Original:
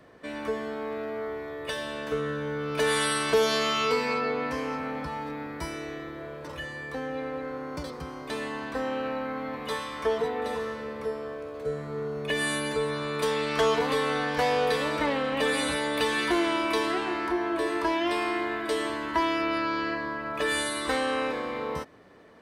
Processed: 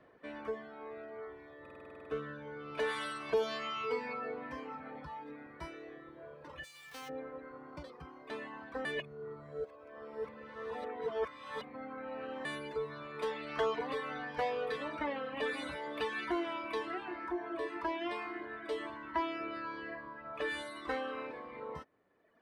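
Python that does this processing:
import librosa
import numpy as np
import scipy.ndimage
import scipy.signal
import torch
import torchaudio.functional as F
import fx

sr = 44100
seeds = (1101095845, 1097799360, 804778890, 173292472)

y = fx.envelope_flatten(x, sr, power=0.1, at=(6.63, 7.08), fade=0.02)
y = fx.edit(y, sr, fx.stutter_over(start_s=1.61, slice_s=0.05, count=10),
    fx.reverse_span(start_s=8.85, length_s=3.6), tone=tone)
y = fx.high_shelf(y, sr, hz=5800.0, db=-8.0)
y = fx.dereverb_blind(y, sr, rt60_s=1.6)
y = fx.bass_treble(y, sr, bass_db=-4, treble_db=-9)
y = y * 10.0 ** (-7.0 / 20.0)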